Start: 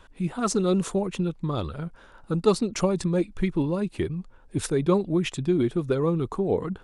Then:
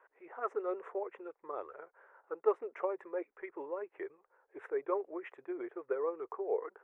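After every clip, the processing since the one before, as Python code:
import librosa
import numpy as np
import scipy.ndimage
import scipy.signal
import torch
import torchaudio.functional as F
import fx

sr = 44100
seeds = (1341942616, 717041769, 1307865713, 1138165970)

y = scipy.signal.sosfilt(scipy.signal.ellip(3, 1.0, 40, [420.0, 2000.0], 'bandpass', fs=sr, output='sos'), x)
y = F.gain(torch.from_numpy(y), -7.5).numpy()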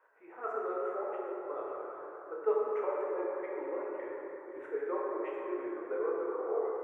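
y = fx.reverse_delay(x, sr, ms=355, wet_db=-12.0)
y = fx.rev_plate(y, sr, seeds[0], rt60_s=3.6, hf_ratio=0.35, predelay_ms=0, drr_db=-5.5)
y = F.gain(torch.from_numpy(y), -4.5).numpy()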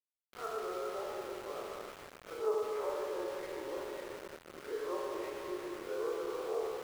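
y = fx.spec_swells(x, sr, rise_s=0.43)
y = np.where(np.abs(y) >= 10.0 ** (-39.5 / 20.0), y, 0.0)
y = F.gain(torch.from_numpy(y), -4.5).numpy()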